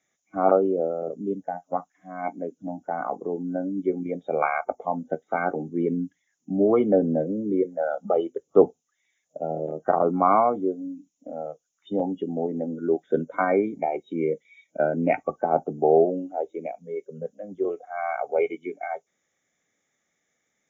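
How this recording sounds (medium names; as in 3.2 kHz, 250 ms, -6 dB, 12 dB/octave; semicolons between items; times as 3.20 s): noise floor -77 dBFS; spectral tilt -3.0 dB/octave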